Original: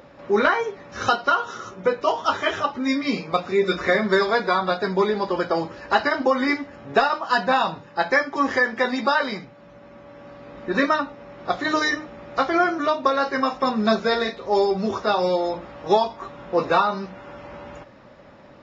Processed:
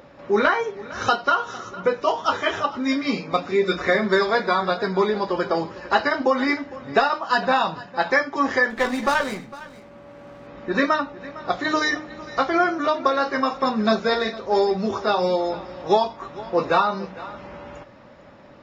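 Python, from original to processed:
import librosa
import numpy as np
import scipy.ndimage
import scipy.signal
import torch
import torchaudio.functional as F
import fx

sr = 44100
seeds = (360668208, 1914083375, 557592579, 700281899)

y = x + 10.0 ** (-18.0 / 20.0) * np.pad(x, (int(456 * sr / 1000.0), 0))[:len(x)]
y = fx.running_max(y, sr, window=5, at=(8.7, 10.47))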